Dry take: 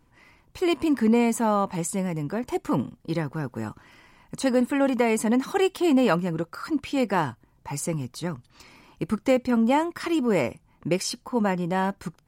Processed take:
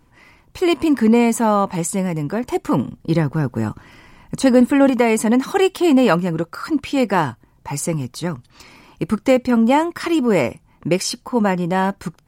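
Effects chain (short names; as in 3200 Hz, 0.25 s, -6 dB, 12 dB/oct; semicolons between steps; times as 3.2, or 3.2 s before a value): 2.88–4.9 low shelf 320 Hz +6 dB; gain +6.5 dB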